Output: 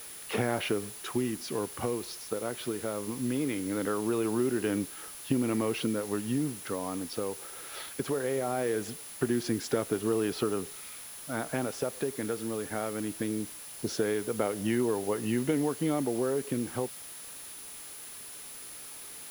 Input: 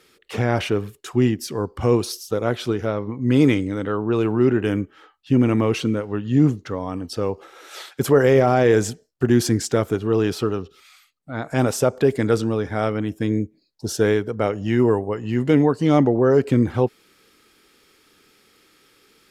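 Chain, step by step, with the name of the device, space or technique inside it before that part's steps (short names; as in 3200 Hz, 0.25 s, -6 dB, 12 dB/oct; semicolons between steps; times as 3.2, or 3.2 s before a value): medium wave at night (BPF 170–4400 Hz; compressor, threshold -25 dBFS, peak gain reduction 14 dB; tremolo 0.2 Hz, depth 42%; whine 10000 Hz -45 dBFS; white noise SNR 15 dB)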